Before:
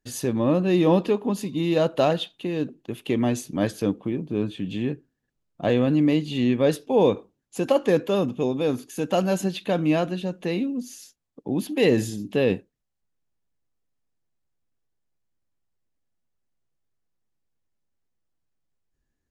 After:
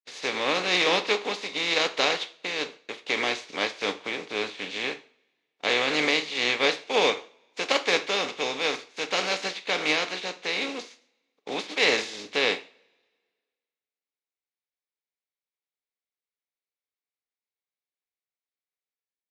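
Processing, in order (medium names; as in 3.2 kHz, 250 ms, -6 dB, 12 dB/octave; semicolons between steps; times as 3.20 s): spectral contrast reduction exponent 0.41; gate -39 dBFS, range -21 dB; cabinet simulation 350–6000 Hz, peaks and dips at 460 Hz +5 dB, 2.2 kHz +9 dB, 3.8 kHz +5 dB; two-slope reverb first 0.39 s, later 1.7 s, from -27 dB, DRR 9 dB; trim -5.5 dB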